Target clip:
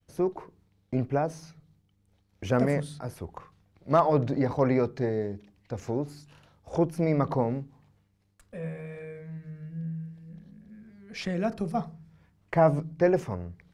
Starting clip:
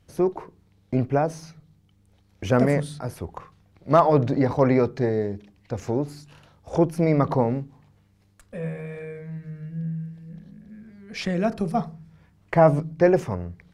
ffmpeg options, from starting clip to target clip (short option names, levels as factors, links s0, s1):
-af "agate=range=0.0224:threshold=0.00158:ratio=3:detection=peak,volume=0.562"